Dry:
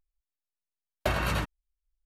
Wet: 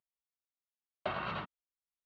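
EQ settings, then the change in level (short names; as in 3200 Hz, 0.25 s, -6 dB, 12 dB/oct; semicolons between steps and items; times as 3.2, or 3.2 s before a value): air absorption 420 m; speaker cabinet 290–5500 Hz, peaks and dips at 290 Hz -10 dB, 520 Hz -5 dB, 910 Hz -4 dB, 1700 Hz -10 dB, 2400 Hz -6 dB, 5100 Hz -3 dB; bell 460 Hz -6.5 dB 1.7 oct; +2.0 dB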